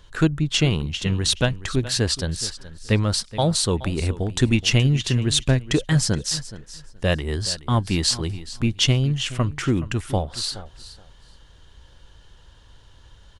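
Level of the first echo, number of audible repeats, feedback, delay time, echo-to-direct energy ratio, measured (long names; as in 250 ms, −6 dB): −16.0 dB, 2, 17%, 423 ms, −16.0 dB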